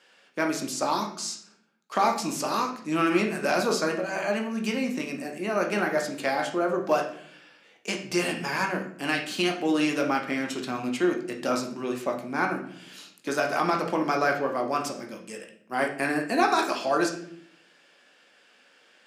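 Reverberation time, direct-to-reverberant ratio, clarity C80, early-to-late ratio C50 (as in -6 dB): 0.60 s, 2.0 dB, 12.0 dB, 8.5 dB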